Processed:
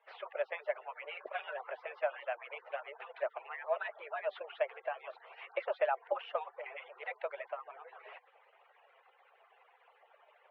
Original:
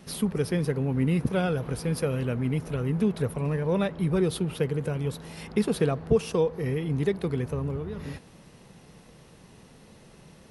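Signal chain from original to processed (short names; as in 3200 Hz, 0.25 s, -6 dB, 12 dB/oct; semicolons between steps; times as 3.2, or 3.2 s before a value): median-filter separation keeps percussive; mistuned SSB +140 Hz 460–2600 Hz; gain -1 dB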